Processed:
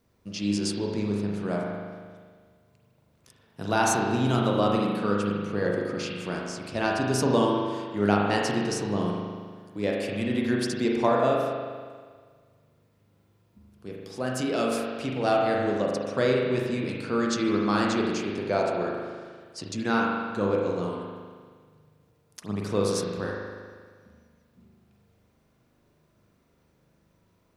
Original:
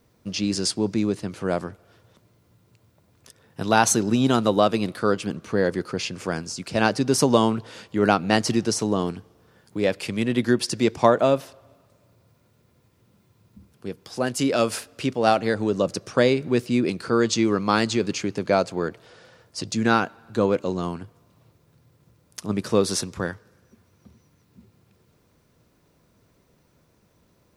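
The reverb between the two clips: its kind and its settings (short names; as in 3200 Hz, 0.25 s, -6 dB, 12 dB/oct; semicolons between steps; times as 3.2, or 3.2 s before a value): spring tank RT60 1.7 s, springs 39 ms, chirp 40 ms, DRR -2 dB; gain -7.5 dB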